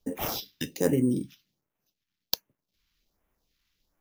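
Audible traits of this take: aliases and images of a low sample rate 8800 Hz, jitter 0%; phasing stages 2, 1.3 Hz, lowest notch 550–4300 Hz

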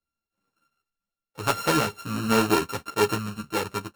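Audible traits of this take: a buzz of ramps at a fixed pitch in blocks of 32 samples; random-step tremolo; a shimmering, thickened sound

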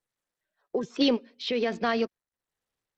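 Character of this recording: tremolo triangle 1.2 Hz, depth 60%; SBC

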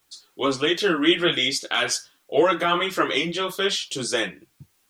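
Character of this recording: a quantiser's noise floor 12-bit, dither triangular; tremolo triangle 1.1 Hz, depth 35%; a shimmering, thickened sound

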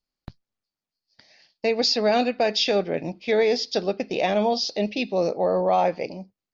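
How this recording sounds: noise floor -90 dBFS; spectral tilt -2.5 dB/oct

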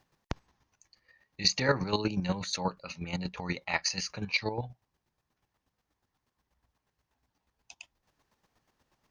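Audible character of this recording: chopped level 8.3 Hz, depth 60%, duty 25%

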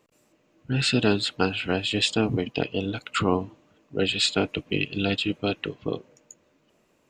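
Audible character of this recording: noise floor -66 dBFS; spectral tilt -4.5 dB/oct

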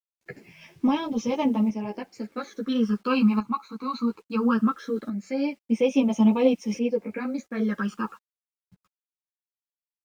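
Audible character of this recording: phasing stages 12, 0.2 Hz, lowest notch 550–1500 Hz; a quantiser's noise floor 10-bit, dither none; tremolo saw up 0.59 Hz, depth 70%; a shimmering, thickened sound

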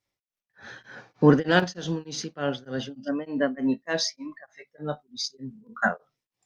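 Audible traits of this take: tremolo triangle 3.3 Hz, depth 100%; SBC

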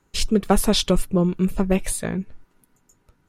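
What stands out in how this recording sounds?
noise floor -65 dBFS; spectral tilt -5.0 dB/oct

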